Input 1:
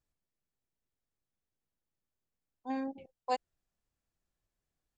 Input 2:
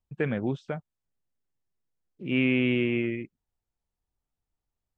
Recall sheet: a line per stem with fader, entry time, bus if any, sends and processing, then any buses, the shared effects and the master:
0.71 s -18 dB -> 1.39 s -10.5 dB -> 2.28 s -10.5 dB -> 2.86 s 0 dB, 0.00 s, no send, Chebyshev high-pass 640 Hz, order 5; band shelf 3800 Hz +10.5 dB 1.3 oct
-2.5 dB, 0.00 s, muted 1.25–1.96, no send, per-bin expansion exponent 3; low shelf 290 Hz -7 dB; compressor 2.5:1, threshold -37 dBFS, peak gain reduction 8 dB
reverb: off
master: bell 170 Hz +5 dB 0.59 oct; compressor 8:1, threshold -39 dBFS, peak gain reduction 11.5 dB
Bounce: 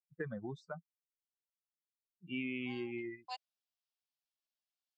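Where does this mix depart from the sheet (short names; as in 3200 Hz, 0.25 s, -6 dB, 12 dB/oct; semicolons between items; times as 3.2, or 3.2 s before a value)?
stem 1 -18.0 dB -> -29.5 dB; master: missing compressor 8:1, threshold -39 dBFS, peak gain reduction 11.5 dB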